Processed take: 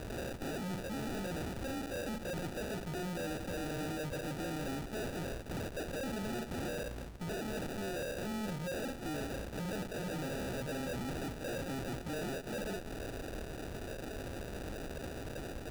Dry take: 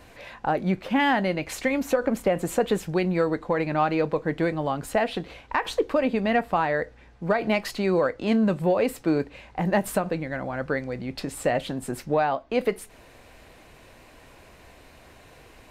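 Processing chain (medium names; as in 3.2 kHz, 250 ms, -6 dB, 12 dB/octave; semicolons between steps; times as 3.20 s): delay that grows with frequency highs early, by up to 152 ms; reverse; compression 6:1, threshold -32 dBFS, peak gain reduction 15 dB; reverse; valve stage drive 51 dB, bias 0.65; two-band feedback delay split 780 Hz, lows 90 ms, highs 261 ms, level -15 dB; sample-and-hold 41×; trim +13.5 dB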